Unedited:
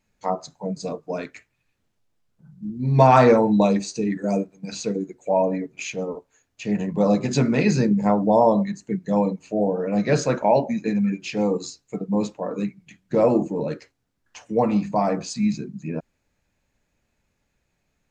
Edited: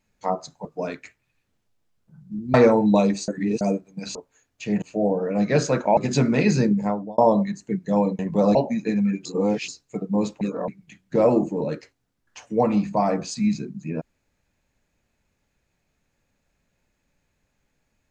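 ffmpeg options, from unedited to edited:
-filter_complex "[0:a]asplit=15[a][b][c][d][e][f][g][h][i][j][k][l][m][n][o];[a]atrim=end=0.652[p];[b]atrim=start=0.958:end=2.852[q];[c]atrim=start=3.198:end=3.942[r];[d]atrim=start=3.938:end=4.272,asetpts=PTS-STARTPTS,areverse[s];[e]atrim=start=4.268:end=4.812[t];[f]atrim=start=6.138:end=6.812[u];[g]atrim=start=9.388:end=10.542[v];[h]atrim=start=7.168:end=8.38,asetpts=PTS-STARTPTS,afade=t=out:st=0.712:d=0.5[w];[i]atrim=start=8.38:end=9.392,asetpts=PTS-STARTPTS,afade=t=in:d=0.004:c=hsin[x];[j]atrim=start=6.808:end=7.172[y];[k]atrim=start=10.538:end=11.242[z];[l]atrim=start=11.238:end=11.672,asetpts=PTS-STARTPTS,areverse[aa];[m]atrim=start=11.668:end=12.402[ab];[n]atrim=start=12.398:end=12.672,asetpts=PTS-STARTPTS,areverse[ac];[o]atrim=start=12.668[ad];[p][q]acrossfade=d=0.004:c1=hsin:c2=hsin[ae];[ae][r]acrossfade=d=0.004:c1=hsin:c2=hsin[af];[af][s]acrossfade=d=0.004:c1=hsin:c2=hsin[ag];[ag][t]acrossfade=d=0.004:c1=hsin:c2=hsin[ah];[ah][u]acrossfade=d=0.004:c1=hsin:c2=hsin[ai];[ai][v]acrossfade=d=0.004:c1=hsin:c2=hsin[aj];[w][x]concat=n=2:v=0:a=1[ak];[aj][ak]acrossfade=d=0.004:c1=hsin:c2=hsin[al];[al][y]acrossfade=d=0.004:c1=hsin:c2=hsin[am];[am][z]acrossfade=d=0.004:c1=hsin:c2=hsin[an];[an][aa]acrossfade=d=0.004:c1=hsin:c2=hsin[ao];[ao][ab]acrossfade=d=0.004:c1=hsin:c2=hsin[ap];[ap][ac]acrossfade=d=0.004:c1=hsin:c2=hsin[aq];[aq][ad]acrossfade=d=0.004:c1=hsin:c2=hsin"

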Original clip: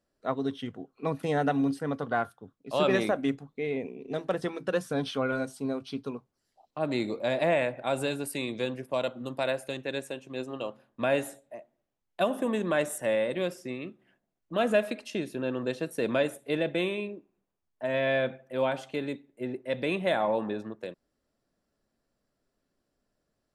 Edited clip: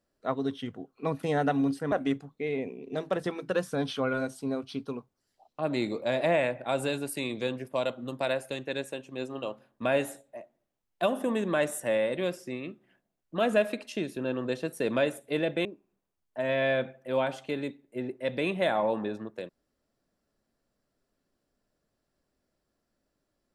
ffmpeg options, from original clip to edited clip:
-filter_complex "[0:a]asplit=3[a][b][c];[a]atrim=end=1.922[d];[b]atrim=start=3.098:end=16.832[e];[c]atrim=start=17.098[f];[d][e]acrossfade=d=0.004:c1=hsin:c2=hsin[g];[g][f]acrossfade=d=0.004:c1=hsin:c2=hsin"

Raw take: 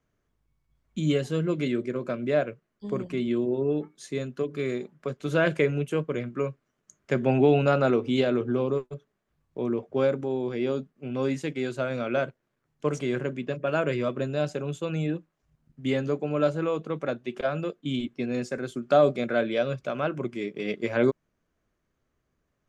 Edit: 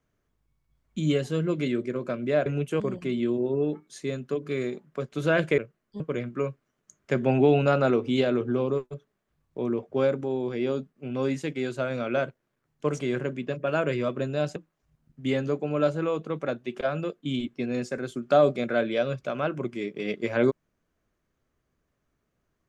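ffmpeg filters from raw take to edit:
-filter_complex "[0:a]asplit=6[a][b][c][d][e][f];[a]atrim=end=2.462[g];[b]atrim=start=5.658:end=6.002[h];[c]atrim=start=2.878:end=5.662[i];[d]atrim=start=2.458:end=2.882[j];[e]atrim=start=5.998:end=14.562[k];[f]atrim=start=15.158[l];[g][h]acrossfade=d=0.004:c1=hsin:c2=hsin[m];[m][i]acrossfade=d=0.004:c1=hsin:c2=hsin[n];[n][j]acrossfade=d=0.004:c1=hsin:c2=hsin[o];[o][k]acrossfade=d=0.004:c1=hsin:c2=hsin[p];[p][l]acrossfade=d=0.004:c1=hsin:c2=hsin"

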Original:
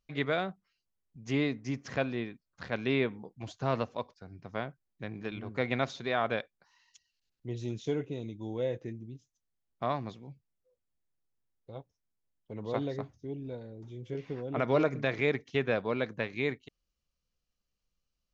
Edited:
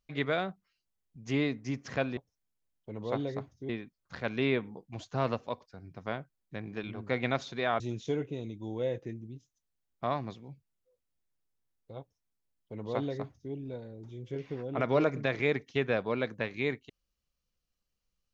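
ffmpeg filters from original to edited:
-filter_complex "[0:a]asplit=4[a][b][c][d];[a]atrim=end=2.172[e];[b]atrim=start=11.788:end=13.312[f];[c]atrim=start=2.168:end=6.282[g];[d]atrim=start=7.588[h];[e][f]acrossfade=d=0.004:c1=hsin:c2=hsin[i];[i][g]acrossfade=d=0.004:c1=hsin:c2=hsin[j];[j][h]acrossfade=d=0.004:c1=hsin:c2=hsin"

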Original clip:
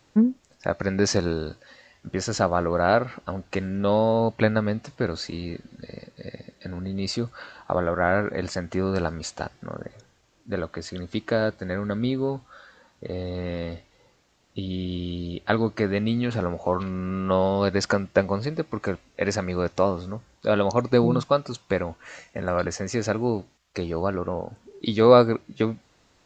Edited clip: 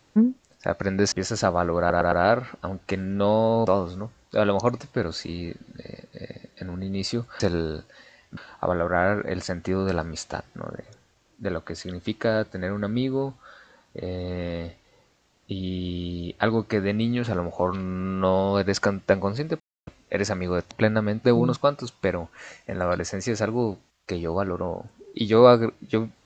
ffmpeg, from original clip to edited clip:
-filter_complex "[0:a]asplit=13[a][b][c][d][e][f][g][h][i][j][k][l][m];[a]atrim=end=1.122[n];[b]atrim=start=2.088:end=2.872[o];[c]atrim=start=2.758:end=2.872[p];[d]atrim=start=2.758:end=2.872[q];[e]atrim=start=2.758:end=4.312[r];[f]atrim=start=19.778:end=20.912[s];[g]atrim=start=4.838:end=7.442[t];[h]atrim=start=1.118:end=2.092[u];[i]atrim=start=7.438:end=18.67,asetpts=PTS-STARTPTS,afade=t=out:st=11.228:d=0.004:c=hsin[v];[j]atrim=start=18.67:end=18.94,asetpts=PTS-STARTPTS,volume=0[w];[k]atrim=start=18.94:end=19.782,asetpts=PTS-STARTPTS,afade=t=in:d=0.004:c=hsin[x];[l]atrim=start=4.308:end=4.842[y];[m]atrim=start=20.908[z];[n][o]acrossfade=d=0.004:c1=hsin:c2=hsin[aa];[aa][p]acrossfade=d=0.004:c1=hsin:c2=hsin[ab];[ab][q]acrossfade=d=0.004:c1=hsin:c2=hsin[ac];[ac][r]acrossfade=d=0.004:c1=hsin:c2=hsin[ad];[ad][s]acrossfade=d=0.004:c1=hsin:c2=hsin[ae];[ae][t]acrossfade=d=0.004:c1=hsin:c2=hsin[af];[af][u]acrossfade=d=0.004:c1=hsin:c2=hsin[ag];[v][w][x]concat=n=3:v=0:a=1[ah];[ag][ah]acrossfade=d=0.004:c1=hsin:c2=hsin[ai];[ai][y]acrossfade=d=0.004:c1=hsin:c2=hsin[aj];[aj][z]acrossfade=d=0.004:c1=hsin:c2=hsin"

